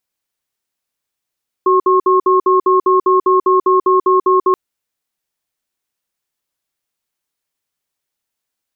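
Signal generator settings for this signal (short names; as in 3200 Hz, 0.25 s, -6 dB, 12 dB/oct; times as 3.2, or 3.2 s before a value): cadence 374 Hz, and 1080 Hz, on 0.14 s, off 0.06 s, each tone -11 dBFS 2.88 s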